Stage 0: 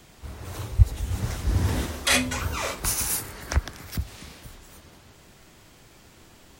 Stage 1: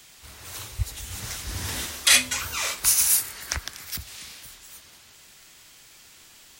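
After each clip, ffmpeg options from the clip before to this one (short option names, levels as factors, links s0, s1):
-af "tiltshelf=f=1200:g=-9.5,volume=0.794"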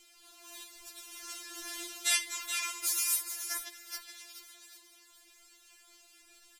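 -filter_complex "[0:a]asplit=2[s0][s1];[s1]aecho=0:1:426:0.376[s2];[s0][s2]amix=inputs=2:normalize=0,aresample=32000,aresample=44100,afftfilt=real='re*4*eq(mod(b,16),0)':imag='im*4*eq(mod(b,16),0)':win_size=2048:overlap=0.75,volume=0.422"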